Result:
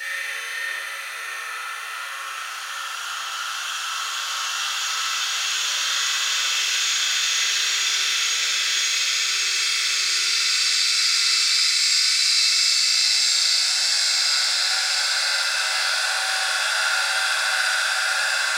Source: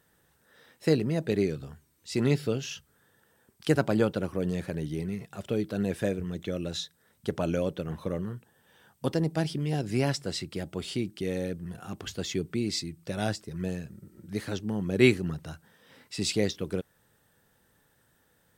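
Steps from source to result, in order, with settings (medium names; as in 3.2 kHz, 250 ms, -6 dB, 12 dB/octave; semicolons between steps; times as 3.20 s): inverse Chebyshev high-pass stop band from 260 Hz, stop band 70 dB; flutter echo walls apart 11.7 m, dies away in 1.2 s; Paulstretch 10×, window 1.00 s, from 11.55 s; simulated room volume 860 m³, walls mixed, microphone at 4.3 m; trim +8.5 dB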